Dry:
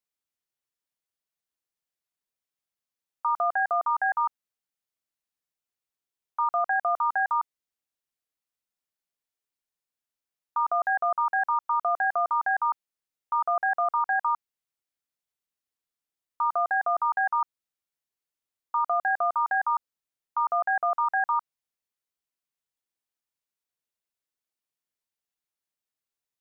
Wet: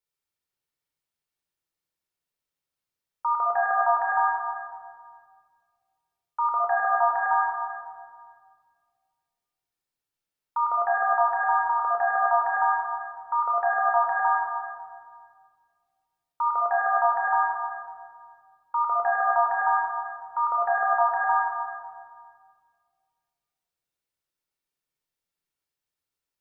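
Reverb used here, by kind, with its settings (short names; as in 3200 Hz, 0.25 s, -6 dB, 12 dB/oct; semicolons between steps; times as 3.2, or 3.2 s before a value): shoebox room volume 3500 m³, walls mixed, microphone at 4.4 m; gain -3 dB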